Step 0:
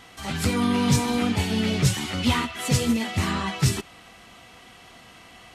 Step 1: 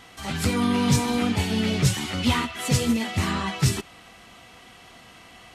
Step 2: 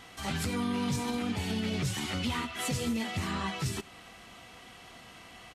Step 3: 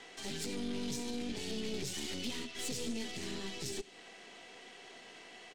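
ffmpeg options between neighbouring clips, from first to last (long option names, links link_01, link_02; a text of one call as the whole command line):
ffmpeg -i in.wav -af anull out.wav
ffmpeg -i in.wav -filter_complex "[0:a]alimiter=limit=-21dB:level=0:latency=1:release=172,asplit=2[link_01][link_02];[link_02]adelay=87.46,volume=-22dB,highshelf=frequency=4000:gain=-1.97[link_03];[link_01][link_03]amix=inputs=2:normalize=0,volume=-2.5dB" out.wav
ffmpeg -i in.wav -filter_complex "[0:a]highpass=300,equalizer=frequency=410:width_type=q:width=4:gain=9,equalizer=frequency=1200:width_type=q:width=4:gain=-8,equalizer=frequency=1800:width_type=q:width=4:gain=3,lowpass=frequency=8400:width=0.5412,lowpass=frequency=8400:width=1.3066,aeval=exprs='(tanh(50.1*val(0)+0.75)-tanh(0.75))/50.1':channel_layout=same,acrossover=split=400|3000[link_01][link_02][link_03];[link_02]acompressor=threshold=-56dB:ratio=6[link_04];[link_01][link_04][link_03]amix=inputs=3:normalize=0,volume=3.5dB" out.wav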